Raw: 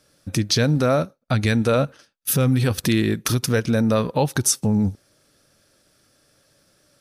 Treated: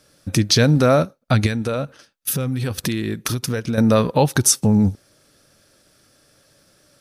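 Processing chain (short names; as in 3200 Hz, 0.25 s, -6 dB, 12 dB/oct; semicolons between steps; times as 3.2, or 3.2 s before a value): 1.46–3.78 compressor, threshold -24 dBFS, peak gain reduction 9.5 dB; gain +4 dB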